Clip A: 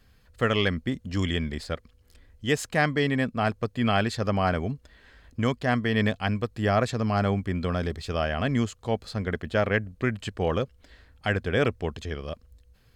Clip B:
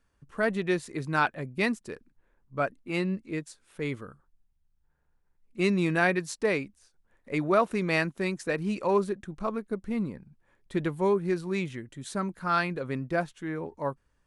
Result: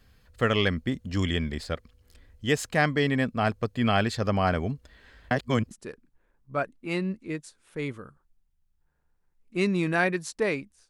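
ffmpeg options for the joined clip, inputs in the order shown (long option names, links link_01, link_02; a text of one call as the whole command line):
ffmpeg -i cue0.wav -i cue1.wav -filter_complex "[0:a]apad=whole_dur=10.89,atrim=end=10.89,asplit=2[link_01][link_02];[link_01]atrim=end=5.312[link_03];[link_02]atrim=start=5.308:end=5.712,asetpts=PTS-STARTPTS,areverse[link_04];[1:a]atrim=start=1.738:end=6.92[link_05];[link_03][link_04]acrossfade=duration=0.004:curve1=hsin:curve2=hsin[link_06];[link_06][link_05]acrossfade=duration=0.004:curve1=hsin:curve2=hsin" out.wav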